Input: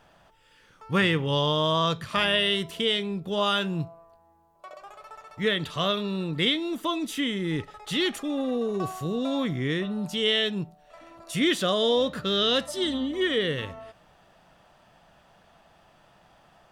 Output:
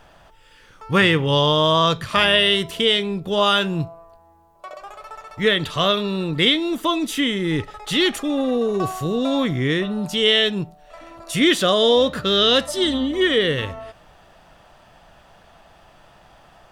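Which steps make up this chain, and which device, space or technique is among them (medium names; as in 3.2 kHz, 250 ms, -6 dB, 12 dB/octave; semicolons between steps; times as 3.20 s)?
low shelf boost with a cut just above (bass shelf 61 Hz +8 dB; peaking EQ 180 Hz -3.5 dB 0.93 oct); trim +7.5 dB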